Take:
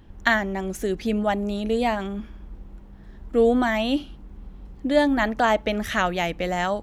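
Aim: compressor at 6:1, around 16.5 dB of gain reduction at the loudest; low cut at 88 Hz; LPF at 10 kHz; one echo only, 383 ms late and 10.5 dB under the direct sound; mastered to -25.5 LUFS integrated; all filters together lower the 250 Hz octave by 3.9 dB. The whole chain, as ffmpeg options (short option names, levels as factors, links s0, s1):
-af "highpass=88,lowpass=10000,equalizer=f=250:t=o:g=-4.5,acompressor=threshold=0.02:ratio=6,aecho=1:1:383:0.299,volume=3.98"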